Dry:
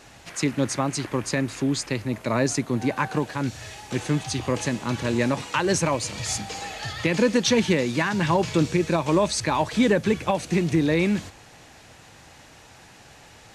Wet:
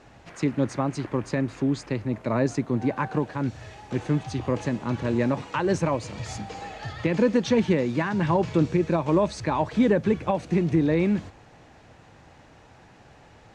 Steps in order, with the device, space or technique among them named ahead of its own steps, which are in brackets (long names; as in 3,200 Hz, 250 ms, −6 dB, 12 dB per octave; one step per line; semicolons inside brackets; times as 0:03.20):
through cloth (low-pass filter 8,400 Hz 12 dB per octave; high-shelf EQ 2,200 Hz −13.5 dB)